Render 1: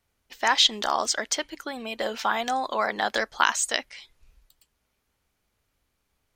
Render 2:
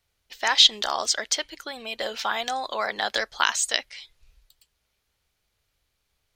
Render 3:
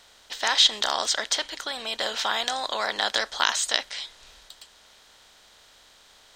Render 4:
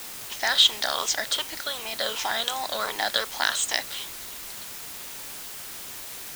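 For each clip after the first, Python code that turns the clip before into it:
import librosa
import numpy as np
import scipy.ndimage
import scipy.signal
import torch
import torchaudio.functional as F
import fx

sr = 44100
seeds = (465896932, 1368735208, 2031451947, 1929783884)

y1 = fx.graphic_eq_10(x, sr, hz=(250, 1000, 4000), db=(-8, -3, 5))
y2 = fx.bin_compress(y1, sr, power=0.6)
y2 = y2 * 10.0 ** (-4.0 / 20.0)
y3 = fx.spec_ripple(y2, sr, per_octave=0.71, drift_hz=-2.7, depth_db=10)
y3 = fx.quant_dither(y3, sr, seeds[0], bits=6, dither='triangular')
y3 = y3 * 10.0 ** (-2.5 / 20.0)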